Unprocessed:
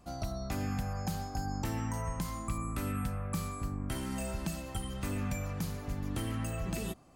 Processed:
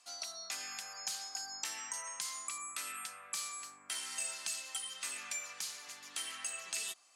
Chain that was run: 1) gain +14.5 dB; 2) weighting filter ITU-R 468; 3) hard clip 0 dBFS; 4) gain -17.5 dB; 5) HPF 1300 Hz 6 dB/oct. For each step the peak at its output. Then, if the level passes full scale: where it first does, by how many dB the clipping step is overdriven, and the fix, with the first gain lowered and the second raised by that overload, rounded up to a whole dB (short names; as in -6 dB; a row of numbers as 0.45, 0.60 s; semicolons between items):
-8.5, -3.0, -3.0, -20.5, -21.5 dBFS; no overload